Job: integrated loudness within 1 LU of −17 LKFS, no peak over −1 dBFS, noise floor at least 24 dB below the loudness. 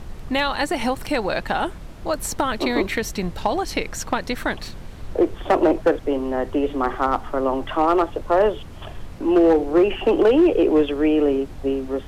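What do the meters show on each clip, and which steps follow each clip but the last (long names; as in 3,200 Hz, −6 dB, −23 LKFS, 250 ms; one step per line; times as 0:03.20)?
share of clipped samples 1.5%; peaks flattened at −10.0 dBFS; background noise floor −37 dBFS; target noise floor −45 dBFS; integrated loudness −21.0 LKFS; sample peak −10.0 dBFS; target loudness −17.0 LKFS
→ clipped peaks rebuilt −10 dBFS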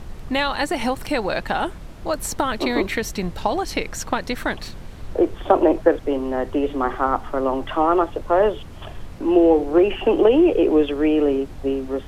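share of clipped samples 0.0%; background noise floor −37 dBFS; target noise floor −45 dBFS
→ noise reduction from a noise print 8 dB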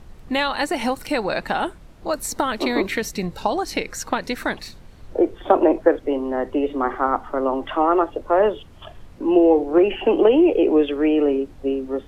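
background noise floor −44 dBFS; target noise floor −45 dBFS
→ noise reduction from a noise print 6 dB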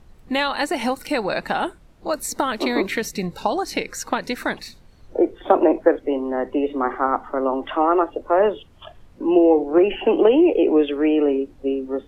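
background noise floor −49 dBFS; integrated loudness −20.5 LKFS; sample peak −1.5 dBFS; target loudness −17.0 LKFS
→ level +3.5 dB
brickwall limiter −1 dBFS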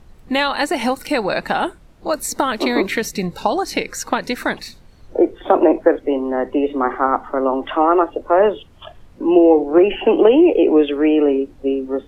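integrated loudness −17.5 LKFS; sample peak −1.0 dBFS; background noise floor −46 dBFS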